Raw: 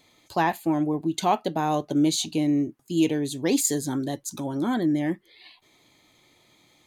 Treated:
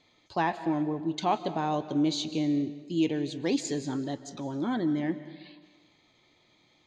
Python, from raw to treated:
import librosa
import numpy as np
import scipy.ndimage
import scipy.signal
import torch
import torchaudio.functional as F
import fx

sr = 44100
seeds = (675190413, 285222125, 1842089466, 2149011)

y = scipy.signal.sosfilt(scipy.signal.butter(4, 5700.0, 'lowpass', fs=sr, output='sos'), x)
y = fx.rev_freeverb(y, sr, rt60_s=1.3, hf_ratio=0.9, predelay_ms=110, drr_db=13.0)
y = F.gain(torch.from_numpy(y), -4.5).numpy()